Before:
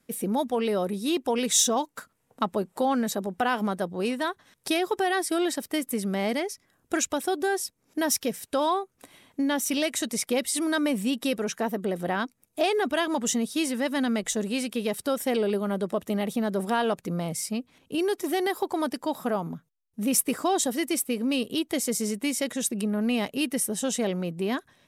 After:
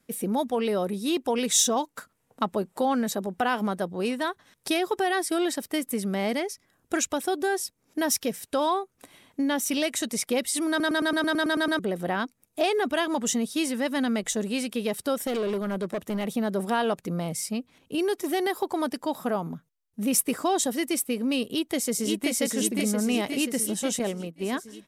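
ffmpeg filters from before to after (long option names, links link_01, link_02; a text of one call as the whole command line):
ffmpeg -i in.wav -filter_complex "[0:a]asettb=1/sr,asplit=3[link_01][link_02][link_03];[link_01]atrim=end=15.274[link_04];[link_02]atrim=start=15.27:end=16.27,asetpts=PTS-STARTPTS,afade=type=in:duration=0.004:curve=qsin,afade=type=out:start_time=0.996:duration=0.004:curve=qsin,asoftclip=type=hard:threshold=-24.5dB[link_05];[link_03]atrim=start=16.266[link_06];[link_04][link_05]acrossfade=duration=0.004:curve1=hsin:curve2=qsin[link_07];[link_07][link_06]acrossfade=duration=0.004:curve1=qsin:curve2=hsin,asplit=2[link_08][link_09];[link_09]afade=type=in:start_time=21.45:duration=0.01,afade=type=out:start_time=22.38:duration=0.01,aecho=0:1:530|1060|1590|2120|2650|3180|3710|4240|4770|5300|5830:0.794328|0.516313|0.335604|0.218142|0.141793|0.0921652|0.0599074|0.0389398|0.0253109|0.0164521|0.0106938[link_10];[link_08][link_10]amix=inputs=2:normalize=0,asettb=1/sr,asplit=3[link_11][link_12][link_13];[link_11]atrim=end=23.994[link_14];[link_12]atrim=start=23.99:end=24.53,asetpts=PTS-STARTPTS,afade=type=in:duration=0.004:curve=qsin,afade=type=out:start_time=0.536:duration=0.004:curve=qsin,agate=range=-33dB:threshold=-25dB:ratio=3:release=100:detection=peak[link_15];[link_13]atrim=start=24.526[link_16];[link_14][link_15]acrossfade=duration=0.004:curve1=hsin:curve2=qsin[link_17];[link_17][link_16]acrossfade=duration=0.004:curve1=qsin:curve2=hsin,asplit=11[link_18][link_19][link_20][link_21][link_22][link_23][link_24][link_25][link_26][link_27][link_28];[link_18]atrim=end=10.802[link_29];[link_19]atrim=start=10.688:end=10.802[link_30];[link_20]atrim=start=10.688:end=10.802[link_31];[link_21]atrim=start=10.688:end=10.802[link_32];[link_22]atrim=start=10.688:end=10.802[link_33];[link_23]atrim=start=10.688:end=10.802[link_34];[link_24]atrim=start=10.688:end=10.802[link_35];[link_25]atrim=start=10.688:end=10.802[link_36];[link_26]atrim=start=10.688:end=10.802[link_37];[link_27]atrim=start=10.688:end=10.802[link_38];[link_28]atrim=start=11.788[link_39];[link_29][link_30]acrossfade=duration=0.004:curve1=hsin:curve2=hsin[link_40];[link_40][link_31]acrossfade=duration=0.004:curve1=hsin:curve2=hsin[link_41];[link_41][link_32]acrossfade=duration=0.004:curve1=hsin:curve2=hsin[link_42];[link_42][link_33]acrossfade=duration=0.004:curve1=hsin:curve2=hsin[link_43];[link_43][link_34]acrossfade=duration=0.004:curve1=hsin:curve2=hsin[link_44];[link_44][link_35]acrossfade=duration=0.004:curve1=hsin:curve2=hsin[link_45];[link_45][link_36]acrossfade=duration=0.004:curve1=hsin:curve2=hsin[link_46];[link_46][link_37]acrossfade=duration=0.004:curve1=hsin:curve2=hsin[link_47];[link_47][link_38]acrossfade=duration=0.004:curve1=hsin:curve2=hsin[link_48];[link_48][link_39]acrossfade=duration=0.004:curve1=hsin:curve2=hsin" out.wav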